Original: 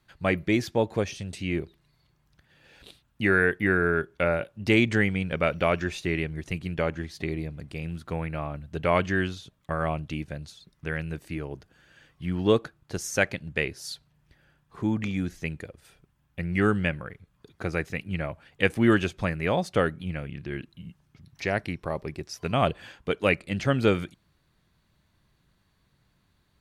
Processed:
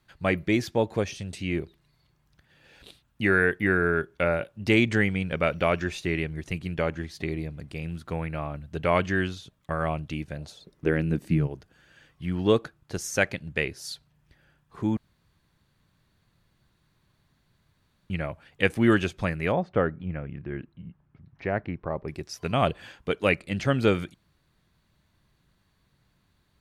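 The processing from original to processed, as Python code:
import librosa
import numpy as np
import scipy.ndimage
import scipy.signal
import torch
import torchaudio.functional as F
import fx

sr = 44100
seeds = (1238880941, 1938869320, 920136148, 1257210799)

y = fx.peak_eq(x, sr, hz=fx.line((10.37, 720.0), (11.46, 150.0)), db=15.0, octaves=1.4, at=(10.37, 11.46), fade=0.02)
y = fx.lowpass(y, sr, hz=1600.0, slope=12, at=(19.51, 22.07), fade=0.02)
y = fx.edit(y, sr, fx.room_tone_fill(start_s=14.97, length_s=3.13), tone=tone)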